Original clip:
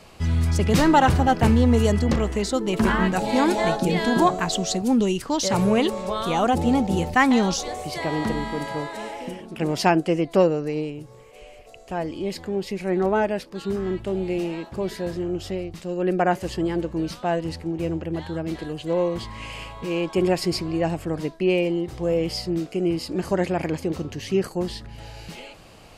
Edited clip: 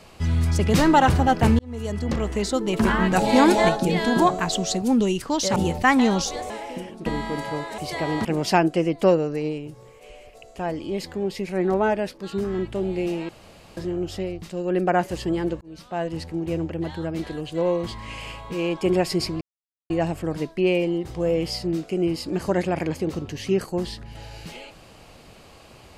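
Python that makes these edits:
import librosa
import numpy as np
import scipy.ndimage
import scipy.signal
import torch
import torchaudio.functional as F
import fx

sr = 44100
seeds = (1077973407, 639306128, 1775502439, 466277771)

y = fx.edit(x, sr, fx.fade_in_span(start_s=1.59, length_s=0.83),
    fx.clip_gain(start_s=3.11, length_s=0.58, db=4.0),
    fx.cut(start_s=5.56, length_s=1.32),
    fx.swap(start_s=7.82, length_s=0.47, other_s=9.01, other_length_s=0.56),
    fx.room_tone_fill(start_s=14.61, length_s=0.48),
    fx.fade_in_span(start_s=16.93, length_s=0.84, curve='qsin'),
    fx.insert_silence(at_s=20.73, length_s=0.49), tone=tone)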